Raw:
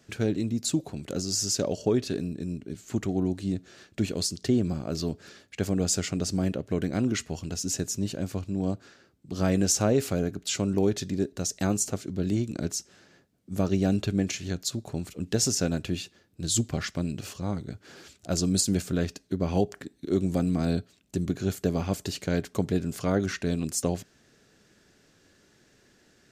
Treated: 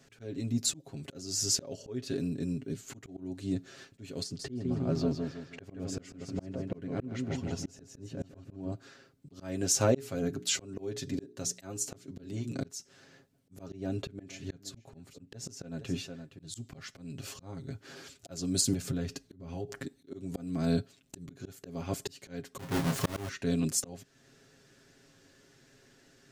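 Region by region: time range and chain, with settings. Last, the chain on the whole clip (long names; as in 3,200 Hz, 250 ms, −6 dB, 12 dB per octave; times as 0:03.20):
0:04.23–0:08.72: low-pass filter 1,700 Hz 6 dB per octave + repeating echo 160 ms, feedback 37%, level −5.5 dB
0:09.78–0:12.62: high-pass filter 80 Hz + mains-hum notches 60/120/180/240/300/360/420 Hz
0:13.71–0:16.54: high-shelf EQ 2,800 Hz −6.5 dB + single-tap delay 468 ms −18 dB
0:18.73–0:19.85: low-shelf EQ 120 Hz +9.5 dB + downward compressor, threshold −29 dBFS
0:22.59–0:23.29: each half-wave held at its own peak + de-essing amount 30% + double-tracking delay 30 ms −5.5 dB
whole clip: comb filter 7.4 ms, depth 66%; volume swells 437 ms; level −1.5 dB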